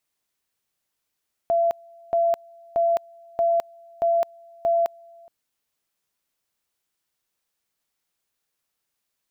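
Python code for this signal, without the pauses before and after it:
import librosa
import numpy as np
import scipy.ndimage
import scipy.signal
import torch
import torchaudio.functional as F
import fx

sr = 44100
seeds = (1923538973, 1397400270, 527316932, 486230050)

y = fx.two_level_tone(sr, hz=677.0, level_db=-17.0, drop_db=28.0, high_s=0.21, low_s=0.42, rounds=6)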